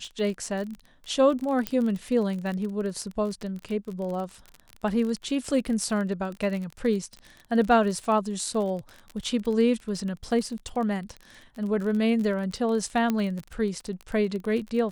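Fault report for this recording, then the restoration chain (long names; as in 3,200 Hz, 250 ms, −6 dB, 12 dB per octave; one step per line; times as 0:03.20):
surface crackle 32 per second −31 dBFS
0:01.67: click −11 dBFS
0:13.10: click −13 dBFS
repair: click removal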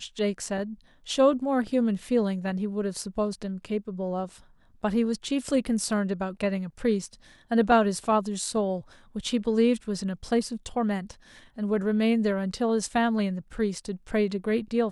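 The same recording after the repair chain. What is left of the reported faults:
none of them is left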